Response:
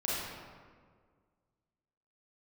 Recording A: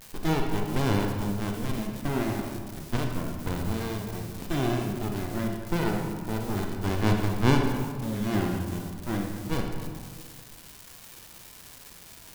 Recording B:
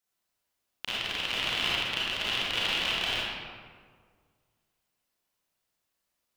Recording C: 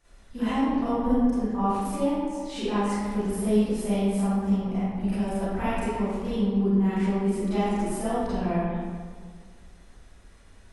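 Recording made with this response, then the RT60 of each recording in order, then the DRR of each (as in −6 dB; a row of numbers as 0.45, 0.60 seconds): B; 1.8, 1.8, 1.8 seconds; 1.5, −7.5, −14.0 decibels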